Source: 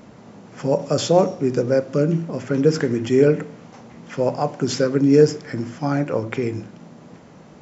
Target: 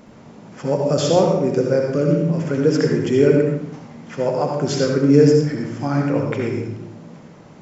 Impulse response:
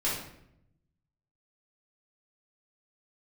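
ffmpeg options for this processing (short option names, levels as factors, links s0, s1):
-filter_complex "[0:a]bandreject=f=60:t=h:w=6,bandreject=f=120:t=h:w=6,asplit=2[s0][s1];[1:a]atrim=start_sample=2205,adelay=65[s2];[s1][s2]afir=irnorm=-1:irlink=0,volume=0.335[s3];[s0][s3]amix=inputs=2:normalize=0,volume=0.891"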